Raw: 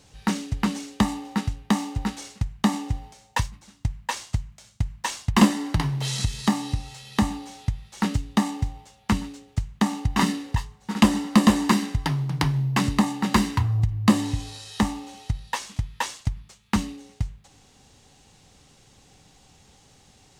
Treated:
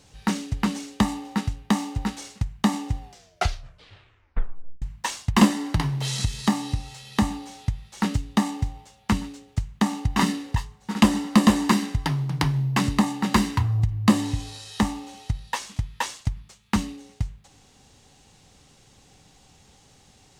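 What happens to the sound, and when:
2.99 tape stop 1.83 s

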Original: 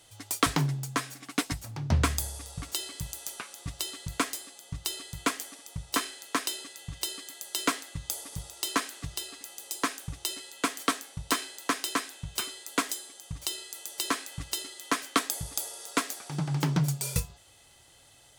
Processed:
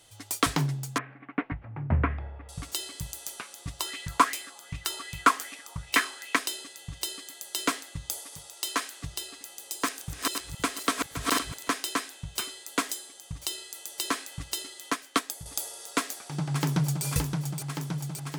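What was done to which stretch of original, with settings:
0.98–2.49 steep low-pass 2300 Hz
3.8–6.36 LFO bell 2.6 Hz 990–2500 Hz +15 dB
8.19–9 HPF 460 Hz 6 dB/oct
9.54–11.69 regenerating reverse delay 0.258 s, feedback 42%, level -3 dB
14.9–15.46 upward expander, over -36 dBFS
15.98–17.05 echo throw 0.57 s, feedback 80%, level -5 dB

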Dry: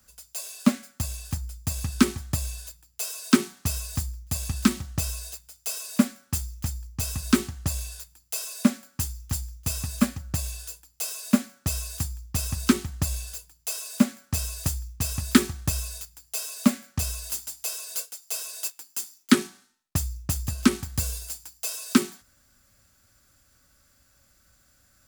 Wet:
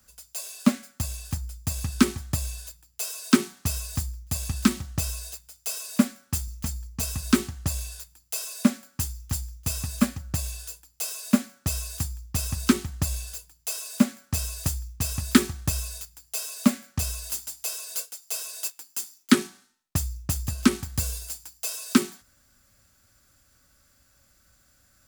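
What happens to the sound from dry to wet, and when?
6.47–7.05 comb 4.5 ms, depth 60%

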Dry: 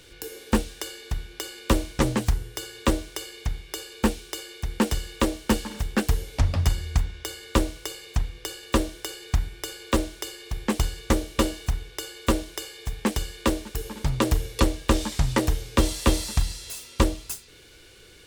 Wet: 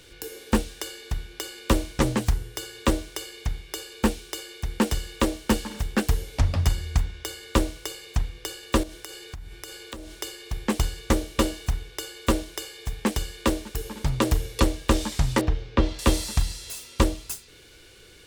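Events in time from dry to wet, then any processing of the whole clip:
8.83–10.21 compressor, threshold -35 dBFS
15.41–15.99 air absorption 230 m

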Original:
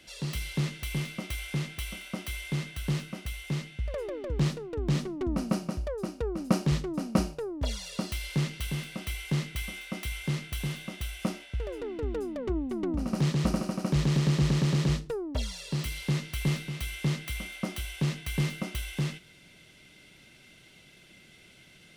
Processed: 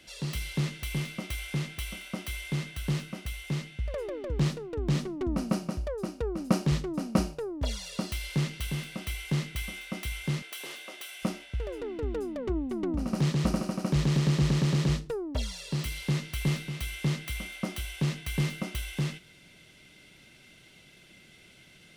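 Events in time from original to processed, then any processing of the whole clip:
10.42–11.23 HPF 370 Hz 24 dB/oct

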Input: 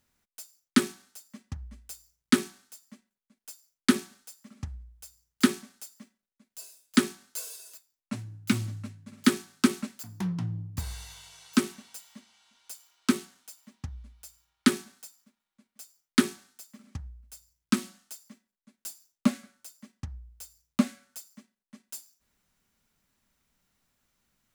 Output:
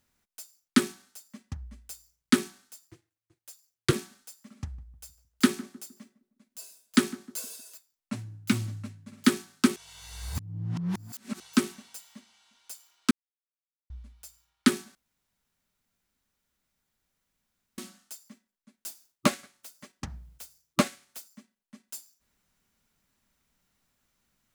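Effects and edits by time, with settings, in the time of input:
2.87–3.93 ring modulator 110 Hz
4.6–7.61 darkening echo 0.154 s, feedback 40%, low-pass 1100 Hz, level -18 dB
9.76–11.4 reverse
13.11–13.9 mute
14.95–17.78 room tone
18.86–21.26 spectral limiter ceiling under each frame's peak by 16 dB

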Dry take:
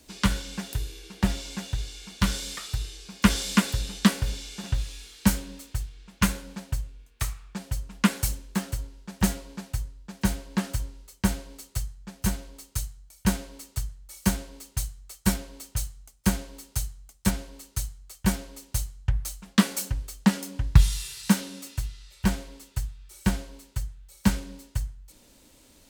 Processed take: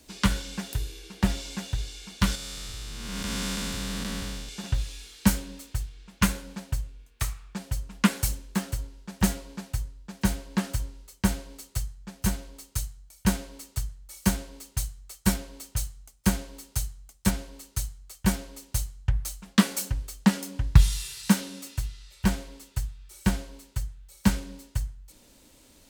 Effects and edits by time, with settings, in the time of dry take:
2.35–4.49 time blur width 0.42 s

